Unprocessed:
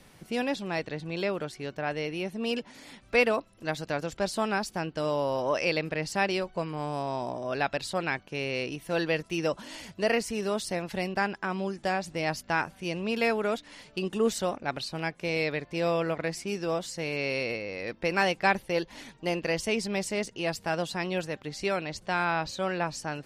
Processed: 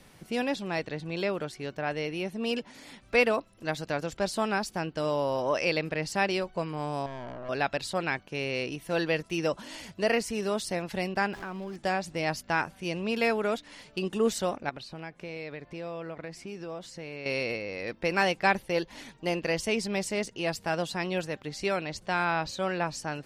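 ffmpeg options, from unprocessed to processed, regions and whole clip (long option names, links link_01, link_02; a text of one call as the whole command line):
ffmpeg -i in.wav -filter_complex "[0:a]asettb=1/sr,asplit=3[link_01][link_02][link_03];[link_01]atrim=end=7.064[link_04];[link_02]atrim=start=7.06:end=7.49,asetpts=PTS-STARTPTS,afade=type=in:duration=0.004:curve=qsin,afade=type=out:start_time=0.426:duration=0.004:curve=qsin,lowpass=2100,aeval=exprs='(tanh(63.1*val(0)+0.65)-tanh(0.65))/63.1':channel_layout=same[link_05];[link_03]atrim=start=7.486[link_06];[link_04][link_05]acrossfade=duration=0.004:curve1=hsin:curve2=qsin[link_07];[link_07][link_06]acrossfade=duration=0.004:curve1=qsin:curve2=hsin,asettb=1/sr,asplit=3[link_08][link_09][link_10];[link_08]atrim=end=11.334[link_11];[link_09]atrim=start=11.33:end=11.76,asetpts=PTS-STARTPTS,afade=type=in:duration=0.004:curve=qsin,afade=type=out:start_time=0.426:duration=0.004:curve=qsin,aeval=exprs='val(0)+0.5*0.0141*sgn(val(0))':channel_layout=same,highshelf=frequency=5900:gain=-11,acompressor=threshold=-37dB:ratio=2.5:attack=3.2:release=140:knee=1:detection=peak[link_12];[link_10]atrim=start=11.756[link_13];[link_11][link_12]acrossfade=duration=0.004:curve1=hsin:curve2=qsin[link_14];[link_14][link_13]acrossfade=duration=0.004:curve1=qsin:curve2=hsin,asettb=1/sr,asplit=3[link_15][link_16][link_17];[link_15]atrim=end=14.694[link_18];[link_16]atrim=start=14.69:end=17.26,asetpts=PTS-STARTPTS,afade=type=in:duration=0.004:curve=qsin,afade=type=out:start_time=2.566:duration=0.004:curve=qsin,acompressor=threshold=-39dB:ratio=2.5:attack=3.2:release=140:knee=1:detection=peak,aemphasis=mode=reproduction:type=cd[link_19];[link_17]atrim=start=17.256[link_20];[link_18][link_19]acrossfade=duration=0.004:curve1=hsin:curve2=qsin[link_21];[link_21][link_20]acrossfade=duration=0.004:curve1=qsin:curve2=hsin" out.wav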